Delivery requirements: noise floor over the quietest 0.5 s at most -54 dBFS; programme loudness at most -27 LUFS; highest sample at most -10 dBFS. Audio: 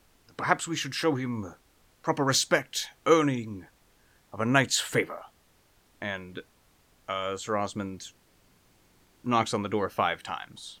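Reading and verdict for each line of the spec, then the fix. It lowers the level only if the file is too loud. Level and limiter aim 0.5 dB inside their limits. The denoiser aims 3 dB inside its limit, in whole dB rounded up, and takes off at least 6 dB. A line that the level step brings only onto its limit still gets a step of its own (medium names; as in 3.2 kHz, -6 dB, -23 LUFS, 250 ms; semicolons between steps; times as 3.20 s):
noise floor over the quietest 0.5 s -64 dBFS: pass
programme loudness -28.5 LUFS: pass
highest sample -5.5 dBFS: fail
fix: peak limiter -10.5 dBFS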